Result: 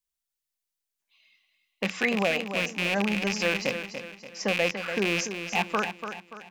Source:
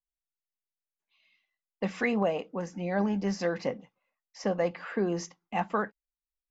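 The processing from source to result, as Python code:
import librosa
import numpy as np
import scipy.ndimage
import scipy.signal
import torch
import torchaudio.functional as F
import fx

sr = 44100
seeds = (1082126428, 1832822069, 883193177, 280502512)

y = fx.rattle_buzz(x, sr, strikes_db=-40.0, level_db=-21.0)
y = fx.high_shelf(y, sr, hz=2300.0, db=9.5)
y = fx.echo_feedback(y, sr, ms=289, feedback_pct=41, wet_db=-9.0)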